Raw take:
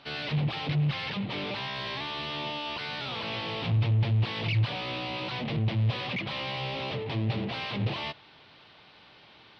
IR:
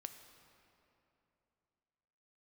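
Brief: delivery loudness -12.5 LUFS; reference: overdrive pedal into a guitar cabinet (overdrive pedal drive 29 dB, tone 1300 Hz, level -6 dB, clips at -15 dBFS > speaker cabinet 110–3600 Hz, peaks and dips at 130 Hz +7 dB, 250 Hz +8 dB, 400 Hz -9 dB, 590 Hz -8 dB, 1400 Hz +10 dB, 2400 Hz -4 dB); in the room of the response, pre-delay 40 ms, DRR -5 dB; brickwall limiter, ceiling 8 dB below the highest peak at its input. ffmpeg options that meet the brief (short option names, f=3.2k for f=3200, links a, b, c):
-filter_complex "[0:a]alimiter=level_in=2dB:limit=-24dB:level=0:latency=1,volume=-2dB,asplit=2[a][b];[1:a]atrim=start_sample=2205,adelay=40[c];[b][c]afir=irnorm=-1:irlink=0,volume=9.5dB[d];[a][d]amix=inputs=2:normalize=0,asplit=2[e][f];[f]highpass=f=720:p=1,volume=29dB,asoftclip=type=tanh:threshold=-15dB[g];[e][g]amix=inputs=2:normalize=0,lowpass=f=1.3k:p=1,volume=-6dB,highpass=110,equalizer=f=130:t=q:w=4:g=7,equalizer=f=250:t=q:w=4:g=8,equalizer=f=400:t=q:w=4:g=-9,equalizer=f=590:t=q:w=4:g=-8,equalizer=f=1.4k:t=q:w=4:g=10,equalizer=f=2.4k:t=q:w=4:g=-4,lowpass=f=3.6k:w=0.5412,lowpass=f=3.6k:w=1.3066,volume=11.5dB"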